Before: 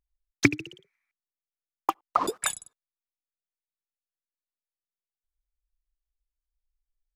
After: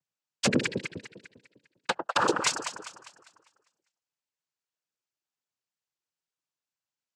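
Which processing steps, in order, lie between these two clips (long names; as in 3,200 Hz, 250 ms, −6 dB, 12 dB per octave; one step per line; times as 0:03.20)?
delay that swaps between a low-pass and a high-pass 100 ms, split 830 Hz, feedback 65%, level −7.5 dB
wave folding −19 dBFS
cochlear-implant simulation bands 8
level +4.5 dB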